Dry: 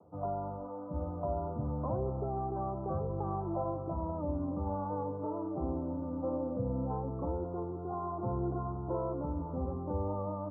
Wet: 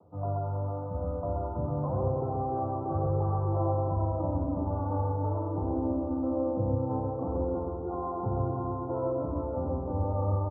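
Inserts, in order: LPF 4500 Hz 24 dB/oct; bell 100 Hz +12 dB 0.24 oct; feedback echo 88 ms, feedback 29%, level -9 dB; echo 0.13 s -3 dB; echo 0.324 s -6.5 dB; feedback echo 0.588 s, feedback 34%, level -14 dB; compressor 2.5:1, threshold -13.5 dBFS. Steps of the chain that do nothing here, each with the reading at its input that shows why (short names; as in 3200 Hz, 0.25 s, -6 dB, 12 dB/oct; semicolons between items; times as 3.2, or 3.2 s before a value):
LPF 4500 Hz: input band ends at 1200 Hz; compressor, threshold -13.5 dBFS: input peak -17.0 dBFS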